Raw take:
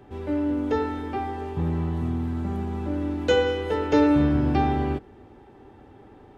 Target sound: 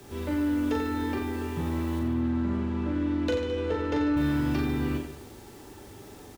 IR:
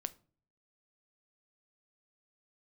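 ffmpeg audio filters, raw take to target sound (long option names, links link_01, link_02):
-filter_complex "[0:a]acrossover=split=110|660[link_01][link_02][link_03];[link_01]acompressor=threshold=-37dB:ratio=4[link_04];[link_02]acompressor=threshold=-29dB:ratio=4[link_05];[link_03]acompressor=threshold=-37dB:ratio=4[link_06];[link_04][link_05][link_06]amix=inputs=3:normalize=0,asoftclip=type=tanh:threshold=-21dB,bandreject=frequency=780:width=12,acrusher=bits=9:mix=0:aa=0.000001,highshelf=frequency=3000:gain=9,asettb=1/sr,asplit=3[link_07][link_08][link_09];[link_07]atrim=end=1.994[link_10];[link_08]atrim=start=1.99:end=4.17,asetpts=PTS-STARTPTS,afade=type=in:duration=0.004:curve=qsin,afade=type=out:start_time=2.176:duration=0.004:curve=qsin,adynamicsmooth=sensitivity=3:basefreq=3200[link_11];[link_09]atrim=start=4.166[link_12];[link_10][link_11]acrossfade=duration=0.004:curve1=hsin:curve2=qsin[link_13];[link_13][link_12]acrossfade=duration=0.004:curve1=qsin:curve2=hsin,aecho=1:1:40|88|145.6|214.7|297.7:0.631|0.398|0.251|0.158|0.1"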